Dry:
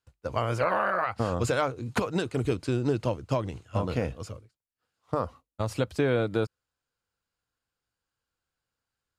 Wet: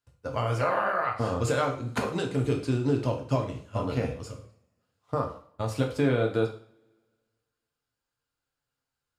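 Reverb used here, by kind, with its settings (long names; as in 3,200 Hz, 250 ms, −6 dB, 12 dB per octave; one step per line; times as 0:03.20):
coupled-rooms reverb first 0.45 s, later 1.8 s, from −28 dB, DRR 1.5 dB
level −2.5 dB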